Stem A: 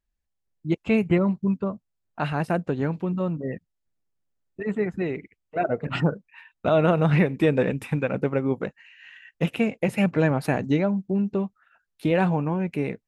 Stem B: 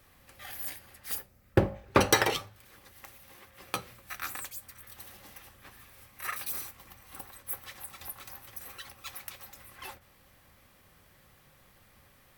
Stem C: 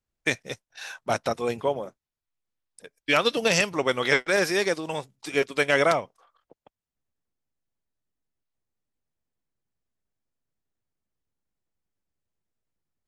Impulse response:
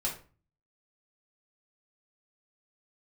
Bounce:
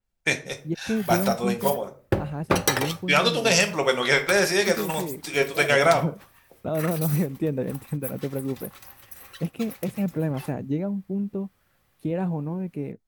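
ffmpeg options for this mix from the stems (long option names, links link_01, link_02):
-filter_complex "[0:a]equalizer=frequency=2400:width=0.36:gain=-12.5,volume=-3dB[link_01];[1:a]agate=range=-7dB:threshold=-51dB:ratio=16:detection=peak,adelay=550,volume=0dB[link_02];[2:a]volume=-1.5dB,asplit=2[link_03][link_04];[link_04]volume=-6dB[link_05];[3:a]atrim=start_sample=2205[link_06];[link_05][link_06]afir=irnorm=-1:irlink=0[link_07];[link_01][link_02][link_03][link_07]amix=inputs=4:normalize=0,adynamicequalizer=threshold=0.0112:dfrequency=4600:dqfactor=0.7:tfrequency=4600:tqfactor=0.7:attack=5:release=100:ratio=0.375:range=2:mode=boostabove:tftype=highshelf"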